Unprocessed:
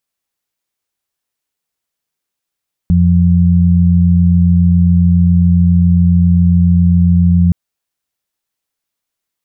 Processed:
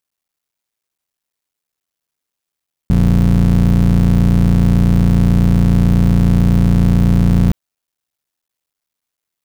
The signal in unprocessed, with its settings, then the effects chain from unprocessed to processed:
steady harmonic partials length 4.62 s, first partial 87.3 Hz, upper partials 1 dB, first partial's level −9.5 dB
sub-harmonics by changed cycles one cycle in 3, muted

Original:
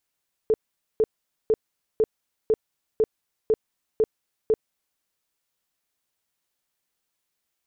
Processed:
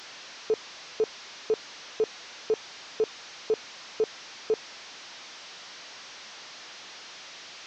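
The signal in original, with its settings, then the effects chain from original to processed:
tone bursts 437 Hz, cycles 17, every 0.50 s, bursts 9, −15.5 dBFS
linear delta modulator 32 kbit/s, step −37.5 dBFS
high-pass filter 480 Hz 6 dB per octave

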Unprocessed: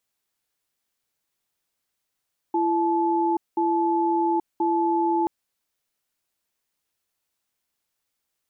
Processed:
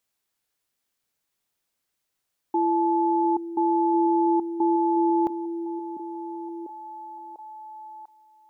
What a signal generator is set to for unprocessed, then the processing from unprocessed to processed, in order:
tone pair in a cadence 337 Hz, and 865 Hz, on 0.83 s, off 0.20 s, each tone −22 dBFS 2.73 s
echo through a band-pass that steps 696 ms, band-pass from 250 Hz, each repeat 0.7 octaves, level −7 dB

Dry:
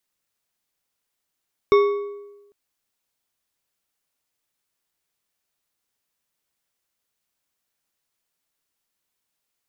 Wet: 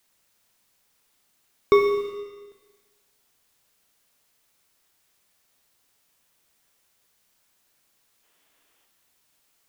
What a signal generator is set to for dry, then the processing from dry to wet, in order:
struck metal bar, length 0.80 s, lowest mode 407 Hz, decay 1.08 s, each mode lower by 7.5 dB, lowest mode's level −10 dB
mu-law and A-law mismatch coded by mu
gain on a spectral selection 0:08.24–0:08.85, 260–3,600 Hz +6 dB
four-comb reverb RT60 1.4 s, combs from 28 ms, DRR 6 dB

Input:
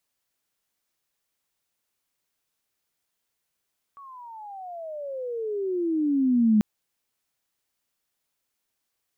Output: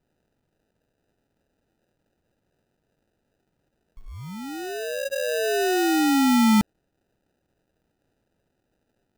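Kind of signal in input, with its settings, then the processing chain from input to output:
pitch glide with a swell sine, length 2.64 s, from 1,140 Hz, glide −29.5 semitones, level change +27 dB, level −15 dB
in parallel at 0 dB: brickwall limiter −25.5 dBFS
on the sum: sample-rate reduction 1,100 Hz, jitter 0%

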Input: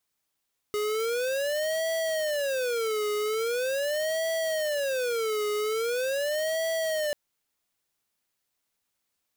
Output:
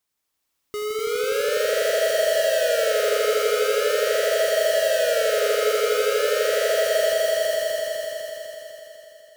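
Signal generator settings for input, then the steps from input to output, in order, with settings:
siren wail 418–653 Hz 0.42 per second square −28 dBFS 6.39 s
echo that builds up and dies away 83 ms, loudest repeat 5, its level −4 dB

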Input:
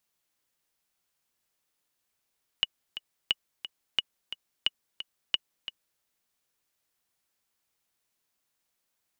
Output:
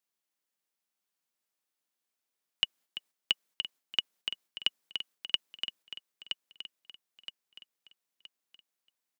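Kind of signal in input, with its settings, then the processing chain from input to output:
click track 177 BPM, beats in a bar 2, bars 5, 2,920 Hz, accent 12 dB −10.5 dBFS
high-pass filter 160 Hz 24 dB per octave
noise gate −56 dBFS, range −8 dB
on a send: repeating echo 970 ms, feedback 38%, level −7 dB

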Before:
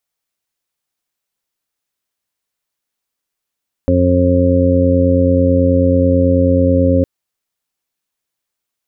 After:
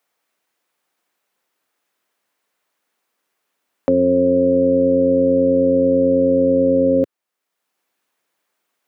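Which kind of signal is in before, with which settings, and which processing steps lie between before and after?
steady harmonic partials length 3.16 s, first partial 89.2 Hz, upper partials −6/0.5/−15.5/−8.5/0 dB, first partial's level −14 dB
high-pass filter 260 Hz 12 dB per octave
multiband upward and downward compressor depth 40%

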